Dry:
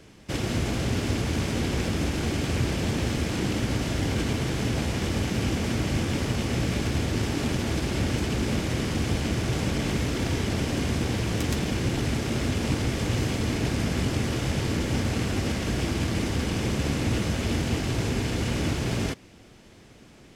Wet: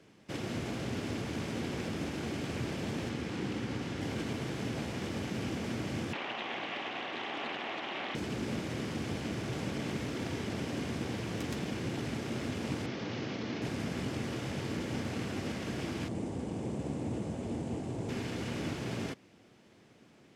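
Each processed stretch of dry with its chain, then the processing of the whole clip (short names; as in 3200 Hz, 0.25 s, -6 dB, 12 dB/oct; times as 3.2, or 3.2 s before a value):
3.09–4.01 high shelf 8800 Hz -9.5 dB + notch 630 Hz, Q 7.3
6.13–8.15 speaker cabinet 420–4600 Hz, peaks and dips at 470 Hz -4 dB, 760 Hz +9 dB, 1100 Hz +7 dB, 2000 Hz +6 dB, 2900 Hz +10 dB, 4300 Hz -7 dB + Doppler distortion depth 0.37 ms
12.86–13.62 CVSD 32 kbps + HPF 130 Hz
16.08–18.09 LPF 9100 Hz 24 dB/oct + band shelf 2700 Hz -11.5 dB 2.6 oct
whole clip: HPF 130 Hz 12 dB/oct; high shelf 4500 Hz -6.5 dB; gain -7.5 dB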